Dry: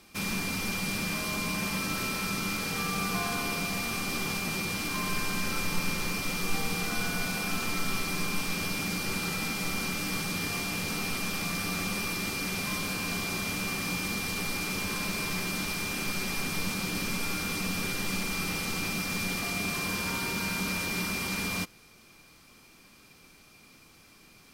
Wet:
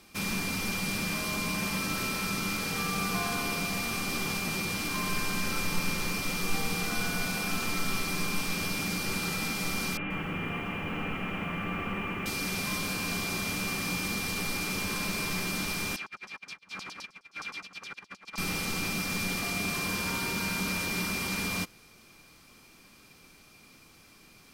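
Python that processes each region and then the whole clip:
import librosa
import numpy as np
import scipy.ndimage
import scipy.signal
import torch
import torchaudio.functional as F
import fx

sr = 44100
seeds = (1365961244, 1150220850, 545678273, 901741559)

y = fx.chain(x, sr, fx.cheby1_lowpass(hz=3000.0, order=6),
    fx.echo_crushed(ms=131, feedback_pct=35, bits=9, wet_db=-5), at=(9.97, 12.26))
y = fx.chain(y, sr, fx.tilt_eq(slope=-2.5),
    fx.over_compress(threshold_db=-27.0, ratio=-0.5),
    fx.filter_lfo_bandpass(shape='saw_down', hz=9.6, low_hz=970.0, high_hz=6500.0, q=2.5), at=(15.96, 18.38))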